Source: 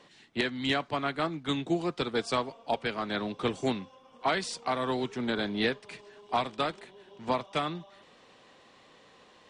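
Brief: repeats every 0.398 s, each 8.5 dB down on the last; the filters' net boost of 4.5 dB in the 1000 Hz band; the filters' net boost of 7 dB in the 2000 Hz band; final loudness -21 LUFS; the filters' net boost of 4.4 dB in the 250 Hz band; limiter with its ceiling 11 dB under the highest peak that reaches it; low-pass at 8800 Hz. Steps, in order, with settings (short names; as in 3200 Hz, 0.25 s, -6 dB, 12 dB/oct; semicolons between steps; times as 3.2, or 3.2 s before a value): LPF 8800 Hz; bell 250 Hz +5 dB; bell 1000 Hz +3.5 dB; bell 2000 Hz +7.5 dB; limiter -21.5 dBFS; feedback echo 0.398 s, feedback 38%, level -8.5 dB; gain +11.5 dB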